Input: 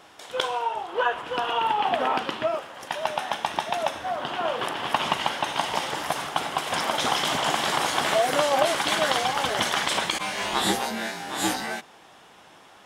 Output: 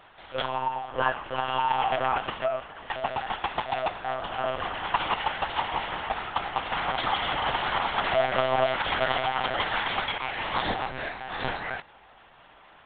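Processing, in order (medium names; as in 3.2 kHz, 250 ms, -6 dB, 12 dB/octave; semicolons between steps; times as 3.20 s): low-pass 3 kHz 12 dB/octave; monotone LPC vocoder at 8 kHz 130 Hz; bass shelf 300 Hz -9.5 dB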